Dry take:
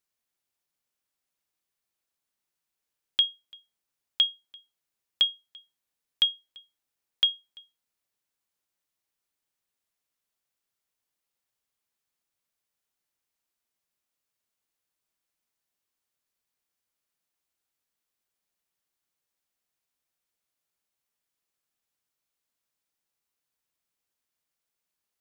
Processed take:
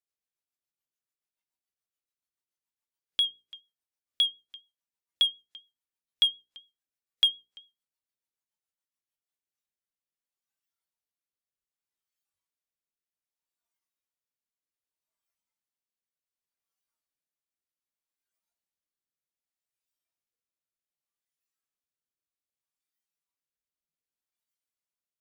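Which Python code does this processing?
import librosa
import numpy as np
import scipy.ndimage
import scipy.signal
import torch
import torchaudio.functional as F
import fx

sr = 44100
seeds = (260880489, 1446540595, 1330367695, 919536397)

p1 = fx.rotary_switch(x, sr, hz=7.0, then_hz=0.65, switch_at_s=8.92)
p2 = fx.noise_reduce_blind(p1, sr, reduce_db=11)
p3 = np.clip(p2, -10.0 ** (-29.5 / 20.0), 10.0 ** (-29.5 / 20.0))
p4 = p2 + F.gain(torch.from_numpy(p3), -8.0).numpy()
y = fx.hum_notches(p4, sr, base_hz=60, count=8)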